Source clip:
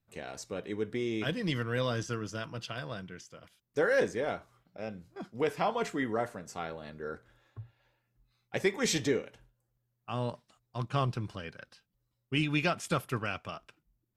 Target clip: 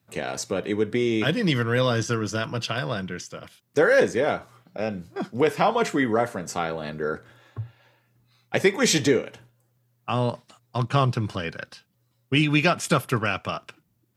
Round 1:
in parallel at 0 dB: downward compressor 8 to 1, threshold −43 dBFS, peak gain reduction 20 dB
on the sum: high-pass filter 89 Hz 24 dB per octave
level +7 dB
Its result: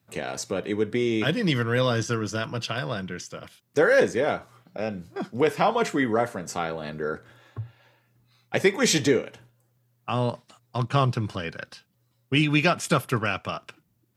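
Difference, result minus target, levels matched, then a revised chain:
downward compressor: peak gain reduction +5 dB
in parallel at 0 dB: downward compressor 8 to 1, threshold −37 dBFS, peak gain reduction 15 dB
on the sum: high-pass filter 89 Hz 24 dB per octave
level +7 dB

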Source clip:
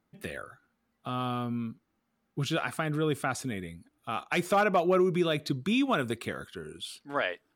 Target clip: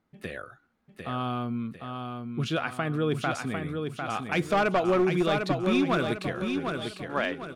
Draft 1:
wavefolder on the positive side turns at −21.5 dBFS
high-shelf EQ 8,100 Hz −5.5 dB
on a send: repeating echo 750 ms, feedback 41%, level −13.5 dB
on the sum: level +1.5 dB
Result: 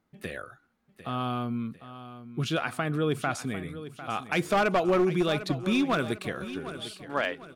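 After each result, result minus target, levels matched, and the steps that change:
echo-to-direct −8 dB; 8,000 Hz band +3.5 dB
change: repeating echo 750 ms, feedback 41%, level −5.5 dB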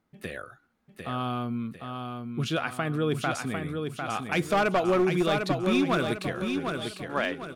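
8,000 Hz band +3.5 dB
change: high-shelf EQ 8,100 Hz −13.5 dB

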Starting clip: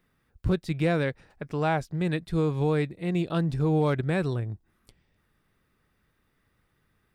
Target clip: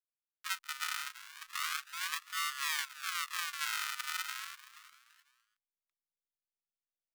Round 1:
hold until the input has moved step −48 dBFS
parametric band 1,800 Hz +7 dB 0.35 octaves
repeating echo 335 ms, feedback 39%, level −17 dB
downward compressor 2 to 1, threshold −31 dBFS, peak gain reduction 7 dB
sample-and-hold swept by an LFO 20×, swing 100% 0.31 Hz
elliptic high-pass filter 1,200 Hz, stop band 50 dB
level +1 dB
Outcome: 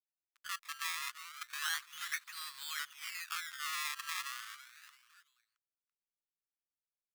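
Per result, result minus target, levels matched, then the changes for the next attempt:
hold until the input has moved: distortion −10 dB; sample-and-hold swept by an LFO: distortion −9 dB; downward compressor: peak gain reduction +4 dB
change: hold until the input has moved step −38.5 dBFS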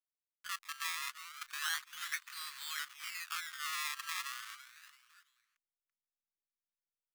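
sample-and-hold swept by an LFO: distortion −9 dB; downward compressor: peak gain reduction +4 dB
change: sample-and-hold swept by an LFO 54×, swing 100% 0.31 Hz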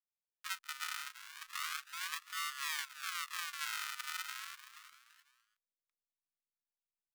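downward compressor: peak gain reduction +4 dB
change: downward compressor 2 to 1, threshold −23 dBFS, peak gain reduction 2.5 dB

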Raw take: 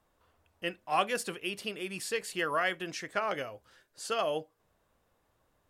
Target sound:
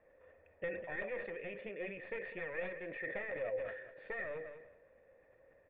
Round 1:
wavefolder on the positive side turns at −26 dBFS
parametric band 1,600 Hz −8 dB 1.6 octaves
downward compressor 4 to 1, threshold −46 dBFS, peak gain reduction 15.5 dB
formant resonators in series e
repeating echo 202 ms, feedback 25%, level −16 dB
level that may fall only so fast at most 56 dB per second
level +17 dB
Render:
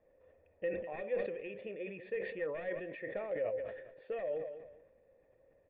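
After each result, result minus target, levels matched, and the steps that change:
wavefolder on the positive side: distortion −14 dB; 2,000 Hz band −7.0 dB
change: wavefolder on the positive side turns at −37 dBFS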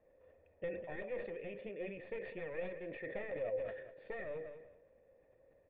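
2,000 Hz band −5.5 dB
change: parametric band 1,600 Hz +2.5 dB 1.6 octaves

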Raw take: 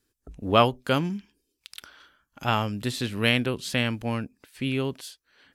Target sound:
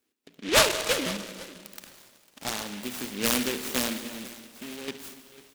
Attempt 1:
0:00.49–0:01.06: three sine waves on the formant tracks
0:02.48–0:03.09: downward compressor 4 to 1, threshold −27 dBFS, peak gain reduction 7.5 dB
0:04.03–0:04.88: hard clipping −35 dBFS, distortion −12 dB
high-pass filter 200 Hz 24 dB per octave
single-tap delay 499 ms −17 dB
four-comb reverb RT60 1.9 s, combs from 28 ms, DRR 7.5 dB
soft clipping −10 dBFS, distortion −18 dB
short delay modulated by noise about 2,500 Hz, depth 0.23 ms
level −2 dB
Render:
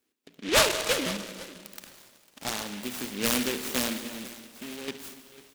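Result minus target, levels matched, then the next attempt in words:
soft clipping: distortion +11 dB
0:00.49–0:01.06: three sine waves on the formant tracks
0:02.48–0:03.09: downward compressor 4 to 1, threshold −27 dBFS, peak gain reduction 7.5 dB
0:04.03–0:04.88: hard clipping −35 dBFS, distortion −12 dB
high-pass filter 200 Hz 24 dB per octave
single-tap delay 499 ms −17 dB
four-comb reverb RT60 1.9 s, combs from 28 ms, DRR 7.5 dB
soft clipping −3.5 dBFS, distortion −29 dB
short delay modulated by noise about 2,500 Hz, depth 0.23 ms
level −2 dB

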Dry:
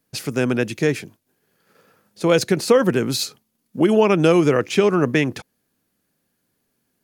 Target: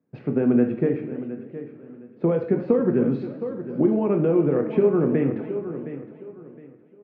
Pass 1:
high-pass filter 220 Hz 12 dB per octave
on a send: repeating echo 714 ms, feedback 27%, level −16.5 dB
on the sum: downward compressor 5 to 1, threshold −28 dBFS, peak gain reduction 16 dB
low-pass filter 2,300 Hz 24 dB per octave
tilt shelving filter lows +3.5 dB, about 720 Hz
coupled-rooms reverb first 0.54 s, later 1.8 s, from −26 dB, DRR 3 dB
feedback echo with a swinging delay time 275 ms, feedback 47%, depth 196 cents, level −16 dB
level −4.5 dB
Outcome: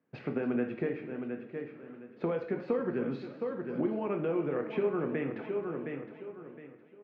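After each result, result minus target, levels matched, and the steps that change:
downward compressor: peak gain reduction +7.5 dB; 1,000 Hz band +6.5 dB
change: downward compressor 5 to 1, threshold −18.5 dBFS, peak gain reduction 8.5 dB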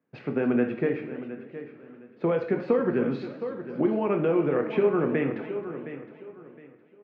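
1,000 Hz band +6.0 dB
change: tilt shelving filter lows +11.5 dB, about 720 Hz

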